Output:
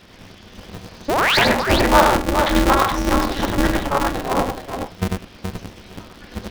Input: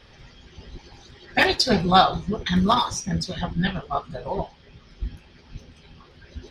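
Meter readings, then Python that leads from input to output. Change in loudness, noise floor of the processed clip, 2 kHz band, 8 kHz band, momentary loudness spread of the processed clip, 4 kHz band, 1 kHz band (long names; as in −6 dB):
+4.0 dB, −44 dBFS, +6.5 dB, +5.5 dB, 19 LU, +2.5 dB, +5.0 dB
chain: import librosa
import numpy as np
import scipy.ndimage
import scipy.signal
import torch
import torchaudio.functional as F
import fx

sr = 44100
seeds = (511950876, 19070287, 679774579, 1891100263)

p1 = fx.env_lowpass_down(x, sr, base_hz=1700.0, full_db=-20.0)
p2 = fx.rider(p1, sr, range_db=4, speed_s=0.5)
p3 = p1 + (p2 * 10.0 ** (-2.0 / 20.0))
p4 = fx.spec_paint(p3, sr, seeds[0], shape='rise', start_s=1.08, length_s=0.3, low_hz=390.0, high_hz=4900.0, level_db=-17.0)
p5 = p4 + fx.echo_multitap(p4, sr, ms=(95, 121, 423), db=(-4.0, -19.5, -6.0), dry=0)
p6 = p5 * np.sign(np.sin(2.0 * np.pi * 140.0 * np.arange(len(p5)) / sr))
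y = p6 * 10.0 ** (-1.0 / 20.0)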